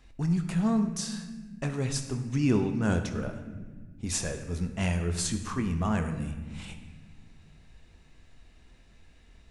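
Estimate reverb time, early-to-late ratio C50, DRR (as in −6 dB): 1.5 s, 8.5 dB, 6.0 dB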